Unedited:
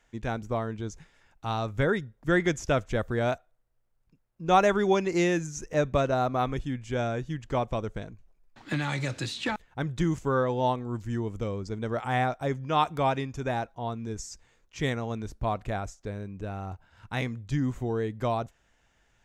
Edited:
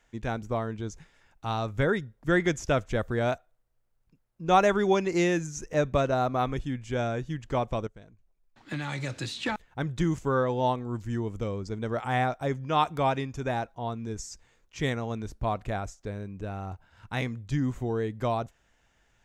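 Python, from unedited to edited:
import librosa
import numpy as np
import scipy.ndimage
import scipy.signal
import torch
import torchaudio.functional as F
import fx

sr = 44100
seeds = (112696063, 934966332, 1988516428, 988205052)

y = fx.edit(x, sr, fx.fade_in_from(start_s=7.87, length_s=1.68, floor_db=-16.0), tone=tone)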